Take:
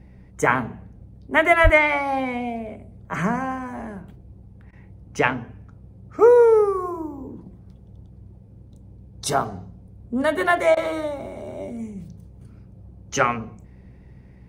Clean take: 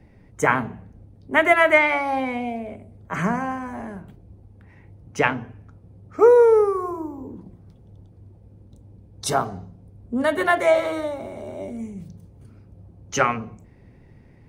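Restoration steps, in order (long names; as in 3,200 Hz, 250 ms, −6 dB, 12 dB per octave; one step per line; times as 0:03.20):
hum removal 62.8 Hz, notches 3
0:01.63–0:01.75: high-pass filter 140 Hz 24 dB per octave
repair the gap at 0:04.71/0:10.75, 17 ms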